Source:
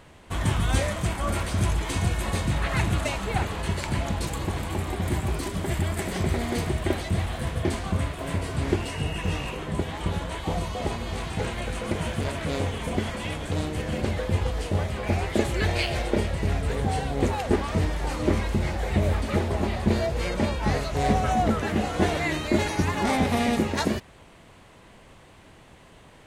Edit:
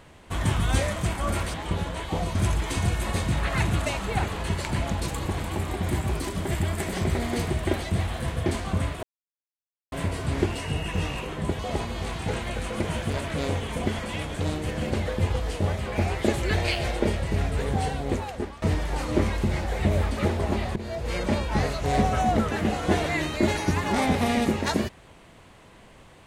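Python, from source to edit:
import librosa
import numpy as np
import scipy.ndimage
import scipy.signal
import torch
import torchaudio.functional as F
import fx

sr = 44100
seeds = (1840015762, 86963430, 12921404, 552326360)

y = fx.edit(x, sr, fx.insert_silence(at_s=8.22, length_s=0.89),
    fx.move(start_s=9.89, length_s=0.81, to_s=1.54),
    fx.fade_out_to(start_s=16.96, length_s=0.77, floor_db=-16.5),
    fx.fade_in_from(start_s=19.87, length_s=0.42, floor_db=-18.0), tone=tone)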